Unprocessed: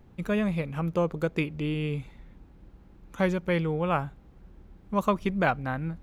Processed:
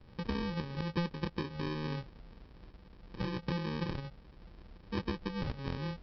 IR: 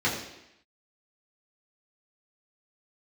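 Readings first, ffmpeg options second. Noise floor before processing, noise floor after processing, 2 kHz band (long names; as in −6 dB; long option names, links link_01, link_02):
−54 dBFS, −57 dBFS, −11.0 dB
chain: -filter_complex "[0:a]acrossover=split=120|790[link_01][link_02][link_03];[link_01]acompressor=threshold=-46dB:ratio=4[link_04];[link_02]acompressor=threshold=-34dB:ratio=4[link_05];[link_03]acompressor=threshold=-40dB:ratio=4[link_06];[link_04][link_05][link_06]amix=inputs=3:normalize=0,aresample=11025,acrusher=samples=16:mix=1:aa=0.000001,aresample=44100,volume=-2dB"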